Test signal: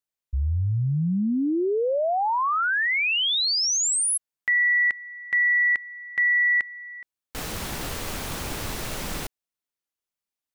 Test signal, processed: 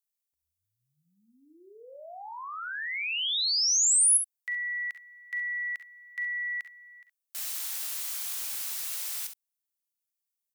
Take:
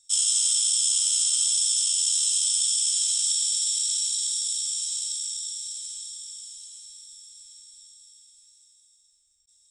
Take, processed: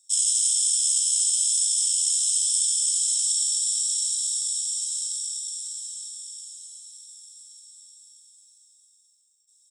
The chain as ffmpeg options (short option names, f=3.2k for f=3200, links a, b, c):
-af "highpass=490,aderivative,aecho=1:1:40|53|67:0.211|0.188|0.299"